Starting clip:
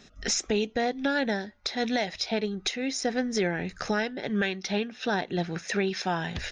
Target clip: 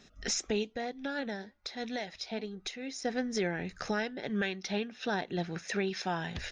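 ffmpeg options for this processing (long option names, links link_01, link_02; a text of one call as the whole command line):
ffmpeg -i in.wav -filter_complex "[0:a]asplit=3[link_01][link_02][link_03];[link_01]afade=type=out:start_time=0.62:duration=0.02[link_04];[link_02]flanger=delay=0.2:depth=5.4:regen=89:speed=1.1:shape=triangular,afade=type=in:start_time=0.62:duration=0.02,afade=type=out:start_time=3.04:duration=0.02[link_05];[link_03]afade=type=in:start_time=3.04:duration=0.02[link_06];[link_04][link_05][link_06]amix=inputs=3:normalize=0,volume=-5dB" out.wav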